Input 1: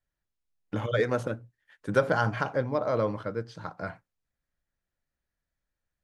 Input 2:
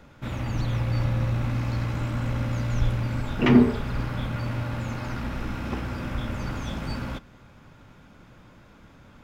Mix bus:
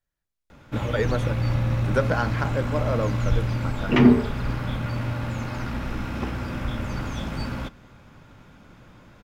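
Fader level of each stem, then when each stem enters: +0.5, +1.5 decibels; 0.00, 0.50 seconds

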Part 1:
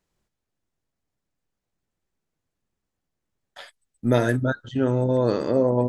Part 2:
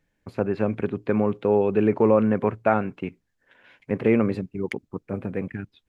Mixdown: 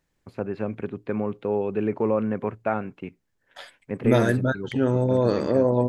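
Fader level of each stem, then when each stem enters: 0.0, −5.0 decibels; 0.00, 0.00 seconds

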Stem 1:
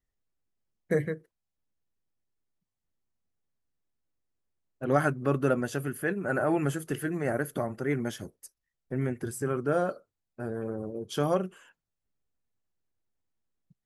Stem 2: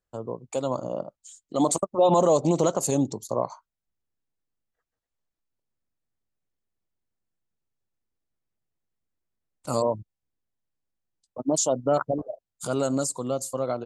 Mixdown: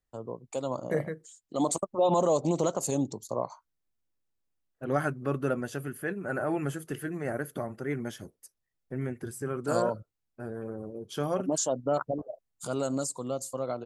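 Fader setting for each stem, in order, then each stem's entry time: −3.5, −5.0 decibels; 0.00, 0.00 seconds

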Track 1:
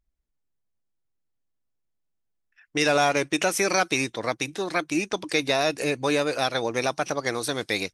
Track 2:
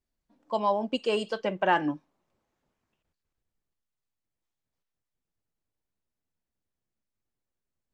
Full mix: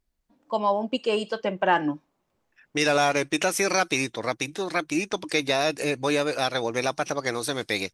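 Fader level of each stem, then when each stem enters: −0.5, +2.5 decibels; 0.00, 0.00 seconds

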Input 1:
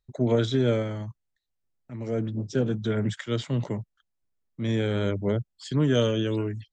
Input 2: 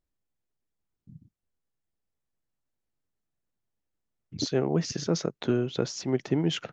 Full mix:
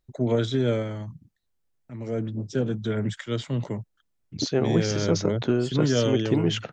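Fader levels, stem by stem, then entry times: −0.5, +2.5 decibels; 0.00, 0.00 seconds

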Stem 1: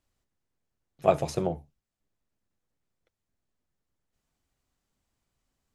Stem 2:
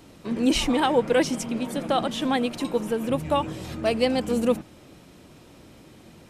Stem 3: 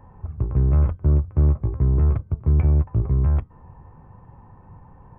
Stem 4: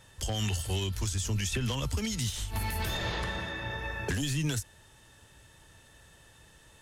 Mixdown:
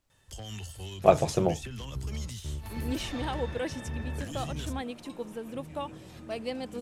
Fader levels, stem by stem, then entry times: +2.5, −12.5, −19.5, −9.5 decibels; 0.00, 2.45, 1.40, 0.10 seconds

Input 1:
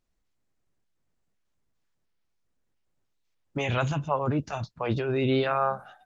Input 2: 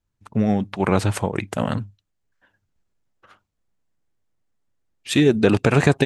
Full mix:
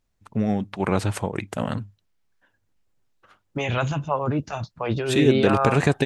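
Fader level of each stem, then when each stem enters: +2.5, −3.5 decibels; 0.00, 0.00 seconds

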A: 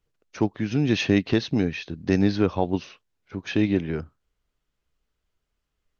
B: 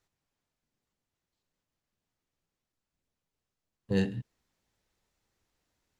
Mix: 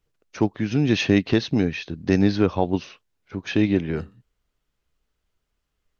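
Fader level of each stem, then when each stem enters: +2.0, −16.5 decibels; 0.00, 0.00 seconds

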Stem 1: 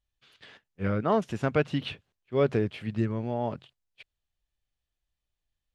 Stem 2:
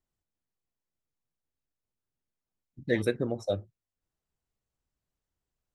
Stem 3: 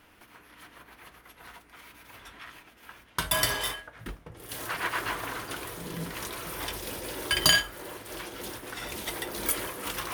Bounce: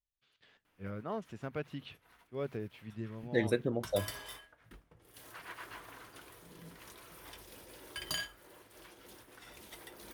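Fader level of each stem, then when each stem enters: −14.0, −3.0, −16.5 decibels; 0.00, 0.45, 0.65 seconds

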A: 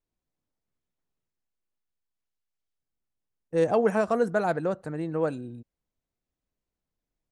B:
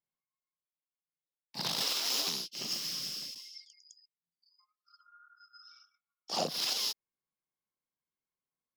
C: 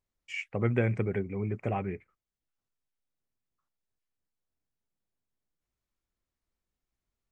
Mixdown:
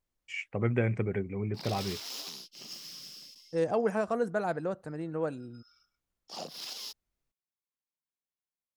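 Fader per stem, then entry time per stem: −5.5, −8.5, −1.0 decibels; 0.00, 0.00, 0.00 seconds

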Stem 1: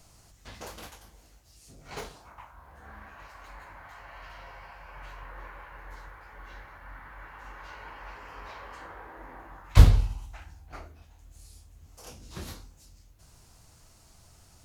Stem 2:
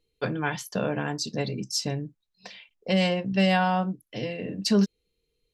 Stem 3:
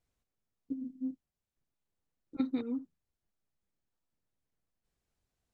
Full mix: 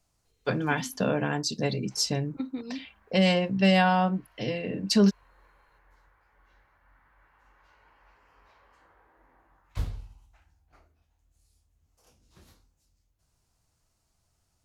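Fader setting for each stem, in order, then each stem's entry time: −17.0, +1.0, −1.5 decibels; 0.00, 0.25, 0.00 seconds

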